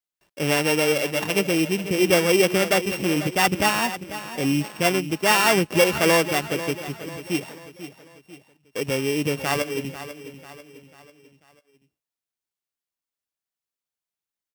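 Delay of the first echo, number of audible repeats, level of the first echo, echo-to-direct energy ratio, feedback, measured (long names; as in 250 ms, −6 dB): 493 ms, 4, −13.0 dB, −12.0 dB, 45%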